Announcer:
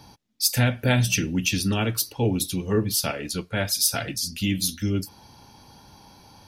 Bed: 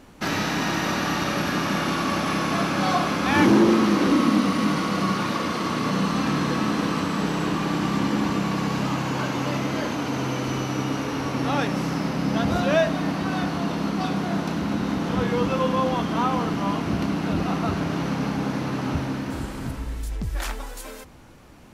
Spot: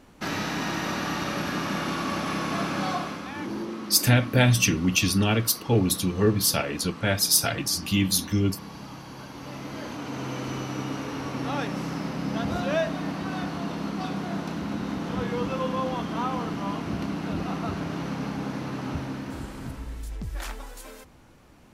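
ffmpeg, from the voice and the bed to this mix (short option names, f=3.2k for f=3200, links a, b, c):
-filter_complex "[0:a]adelay=3500,volume=1.5dB[a];[1:a]volume=6.5dB,afade=t=out:st=2.77:d=0.57:silence=0.251189,afade=t=in:st=9.29:d=1.11:silence=0.281838[b];[a][b]amix=inputs=2:normalize=0"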